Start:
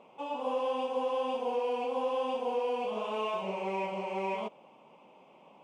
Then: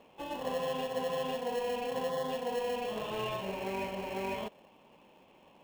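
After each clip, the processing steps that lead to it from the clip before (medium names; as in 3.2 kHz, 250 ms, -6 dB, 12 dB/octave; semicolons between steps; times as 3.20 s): peaking EQ 3.6 kHz +6.5 dB 0.92 oct; spectral selection erased 2.09–2.31 s, 1.6–3.2 kHz; in parallel at -6.5 dB: sample-rate reducer 1.2 kHz, jitter 0%; on the sum: trim -4 dB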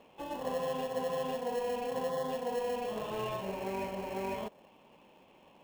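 dynamic bell 2.9 kHz, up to -5 dB, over -57 dBFS, Q 1.2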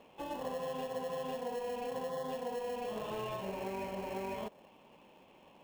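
compression, threshold -35 dBFS, peak gain reduction 6 dB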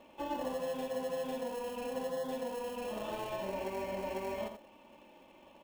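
comb 3.4 ms, depth 53%; delay 85 ms -8 dB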